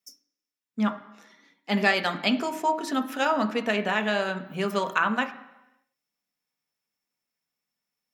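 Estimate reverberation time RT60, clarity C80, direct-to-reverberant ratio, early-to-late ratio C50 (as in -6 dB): 1.0 s, 16.0 dB, 6.0 dB, 13.0 dB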